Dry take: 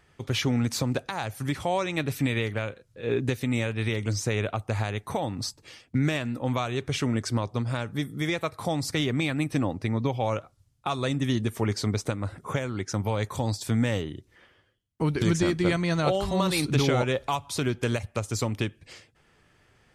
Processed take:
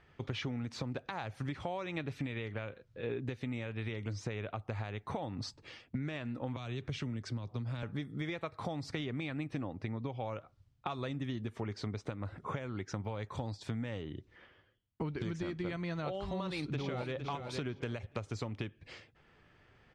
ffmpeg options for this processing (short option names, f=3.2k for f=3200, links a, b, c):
-filter_complex "[0:a]asettb=1/sr,asplit=3[a][b][c];[a]atrim=end=6.564[d];[b]atrim=start=6.56:end=7.83,asetpts=PTS-STARTPTS,afade=t=in:d=0.004:c=qsin,afade=t=out:st=1.266:d=0.004:c=qsin,acrossover=split=240|3000[e][f][g];[f]acompressor=threshold=-41dB:ratio=2.5:attack=3.2:release=140:knee=2.83:detection=peak[h];[e][h][g]amix=inputs=3:normalize=0[i];[c]atrim=start=7.826[j];[d][i]acrossfade=d=0.004:c1=hsin:c2=qsin[k];[k][j]acrossfade=d=0.004:c1=qsin:c2=hsin,asplit=2[l][m];[m]afade=t=in:st=16.31:d=0.01,afade=t=out:st=17.14:d=0.01,aecho=0:1:460|920|1380:0.281838|0.0563677|0.0112735[n];[l][n]amix=inputs=2:normalize=0,lowpass=3.7k,acompressor=threshold=-33dB:ratio=6,volume=-2dB"